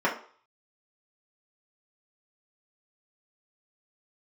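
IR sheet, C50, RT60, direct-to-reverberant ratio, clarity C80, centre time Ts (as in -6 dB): 9.5 dB, 0.45 s, -5.0 dB, 14.5 dB, 20 ms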